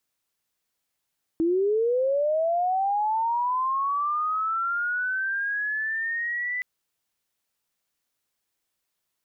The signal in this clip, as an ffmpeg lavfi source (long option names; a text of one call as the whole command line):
ffmpeg -f lavfi -i "aevalsrc='pow(10,(-19.5-6.5*t/5.22)/20)*sin(2*PI*(320*t+1680*t*t/(2*5.22)))':duration=5.22:sample_rate=44100" out.wav